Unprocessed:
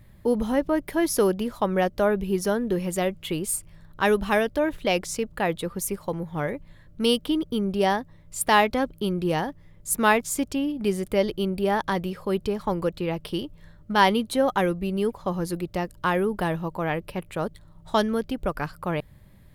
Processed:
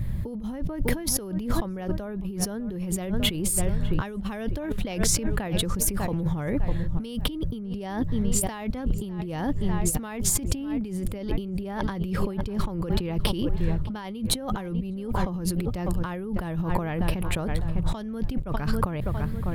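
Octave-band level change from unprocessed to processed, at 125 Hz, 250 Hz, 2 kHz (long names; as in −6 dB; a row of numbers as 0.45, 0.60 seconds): +5.0, −1.5, −9.0 decibels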